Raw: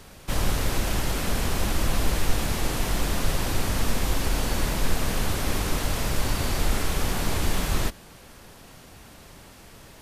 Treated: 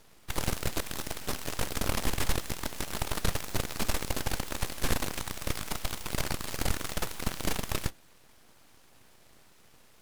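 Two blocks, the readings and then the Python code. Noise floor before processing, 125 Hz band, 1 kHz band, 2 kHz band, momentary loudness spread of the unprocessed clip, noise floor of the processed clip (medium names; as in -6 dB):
-48 dBFS, -9.0 dB, -6.5 dB, -5.5 dB, 20 LU, -58 dBFS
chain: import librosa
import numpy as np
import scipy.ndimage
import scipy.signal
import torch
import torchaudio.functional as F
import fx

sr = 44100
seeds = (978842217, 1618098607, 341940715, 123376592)

y = fx.cheby_harmonics(x, sr, harmonics=(7, 8), levels_db=(-13, -21), full_scale_db=-8.0)
y = np.abs(y)
y = F.gain(torch.from_numpy(y), -4.5).numpy()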